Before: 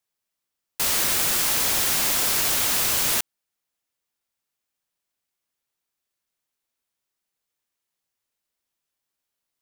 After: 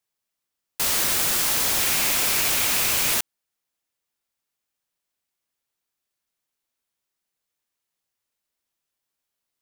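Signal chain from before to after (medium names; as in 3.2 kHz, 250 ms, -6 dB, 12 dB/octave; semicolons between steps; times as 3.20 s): 1.79–3.14 s: peaking EQ 2.4 kHz +5.5 dB 0.41 oct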